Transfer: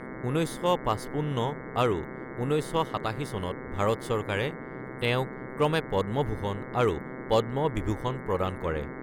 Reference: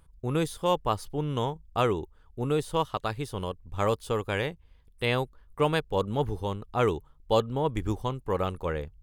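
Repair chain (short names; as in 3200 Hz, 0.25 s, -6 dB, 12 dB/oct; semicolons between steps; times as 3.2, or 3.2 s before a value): clip repair -13.5 dBFS; de-hum 128.9 Hz, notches 17; noise print and reduce 16 dB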